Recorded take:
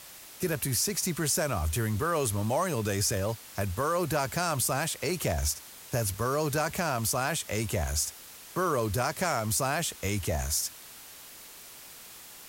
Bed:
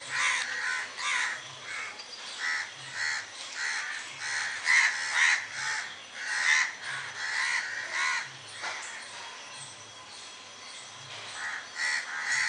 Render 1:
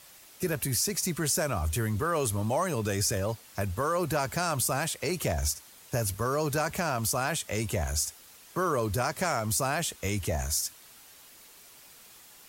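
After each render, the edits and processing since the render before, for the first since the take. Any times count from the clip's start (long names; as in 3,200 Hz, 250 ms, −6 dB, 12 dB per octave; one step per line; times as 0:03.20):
broadband denoise 6 dB, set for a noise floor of −48 dBFS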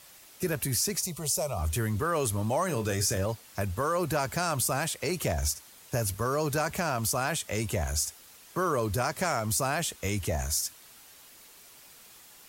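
0:01.02–0:01.59: phaser with its sweep stopped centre 670 Hz, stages 4
0:02.65–0:03.26: double-tracking delay 32 ms −10.5 dB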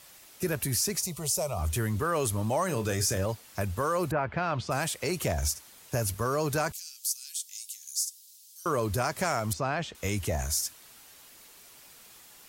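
0:04.10–0:04.70: low-pass filter 2,000 Hz → 4,800 Hz 24 dB per octave
0:06.72–0:08.66: inverse Chebyshev high-pass filter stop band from 710 Hz, stop band 80 dB
0:09.53–0:09.95: high-frequency loss of the air 180 metres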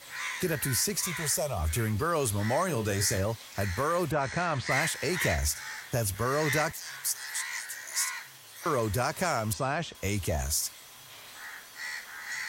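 mix in bed −8 dB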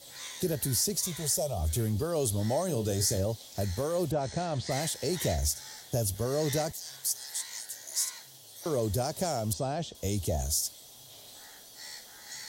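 flat-topped bell 1,600 Hz −14 dB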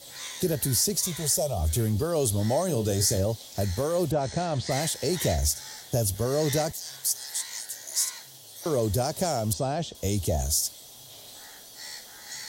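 level +4 dB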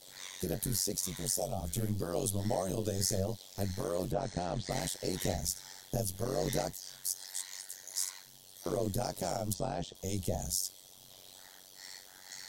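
flanger 1.8 Hz, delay 5.8 ms, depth 2.5 ms, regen −60%
amplitude modulation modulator 94 Hz, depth 100%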